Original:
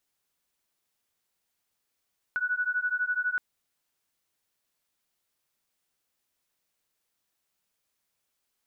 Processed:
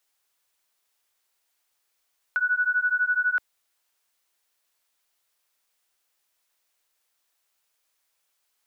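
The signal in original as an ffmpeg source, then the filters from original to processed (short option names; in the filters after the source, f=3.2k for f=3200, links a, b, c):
-f lavfi -i "aevalsrc='0.0355*(sin(2*PI*1470*t)+sin(2*PI*1482*t))':d=1.02:s=44100"
-filter_complex "[0:a]equalizer=f=150:w=1.1:g=-13,acrossover=split=320|470[a][b][c];[c]acontrast=32[d];[a][b][d]amix=inputs=3:normalize=0"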